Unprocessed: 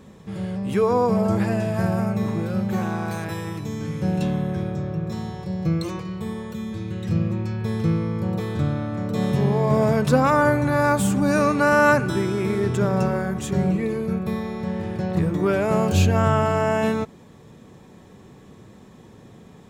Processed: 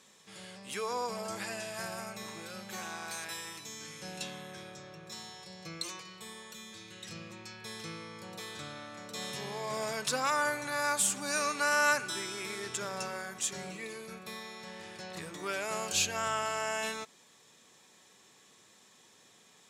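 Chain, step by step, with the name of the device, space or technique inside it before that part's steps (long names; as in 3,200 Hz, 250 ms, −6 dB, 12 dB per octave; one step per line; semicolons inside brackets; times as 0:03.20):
piezo pickup straight into a mixer (low-pass filter 7,900 Hz 12 dB per octave; first difference)
level +6 dB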